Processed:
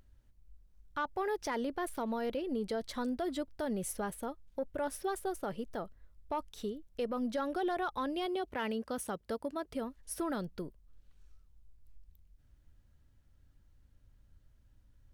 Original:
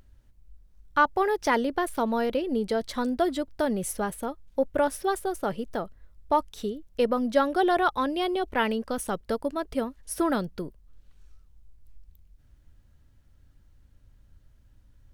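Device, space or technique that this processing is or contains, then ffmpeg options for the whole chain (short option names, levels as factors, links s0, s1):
soft clipper into limiter: -filter_complex "[0:a]asoftclip=type=tanh:threshold=0.237,alimiter=limit=0.0944:level=0:latency=1:release=79,asettb=1/sr,asplit=3[s0][s1][s2];[s0]atrim=end=8.264[s3];[s1]atrim=start=8.26:end=9.76,asetpts=PTS-STARTPTS,afade=t=in:d=0.004:c=qsin,afade=t=out:st=1.496:d=0.004:c=qsin,highpass=61[s4];[s2]atrim=start=9.756[s5];[s3][s4]acrossfade=d=0.004:c1=hsin:c2=qsin[s6];[s6][s5]acrossfade=d=0.004:c1=qsin:c2=hsin,volume=0.473"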